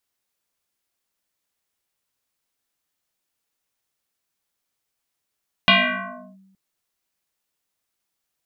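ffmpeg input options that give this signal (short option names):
-f lavfi -i "aevalsrc='0.355*pow(10,-3*t/1.09)*sin(2*PI*192*t+7.6*clip(1-t/0.69,0,1)*sin(2*PI*2.28*192*t))':d=0.87:s=44100"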